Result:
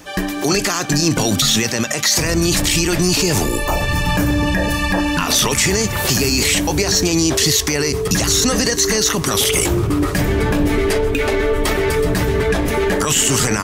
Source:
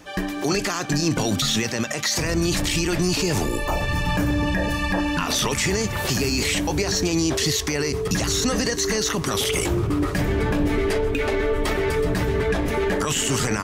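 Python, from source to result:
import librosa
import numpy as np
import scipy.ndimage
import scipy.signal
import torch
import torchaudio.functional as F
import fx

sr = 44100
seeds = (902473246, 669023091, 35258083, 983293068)

y = fx.high_shelf(x, sr, hz=6300.0, db=7.5)
y = y * librosa.db_to_amplitude(5.0)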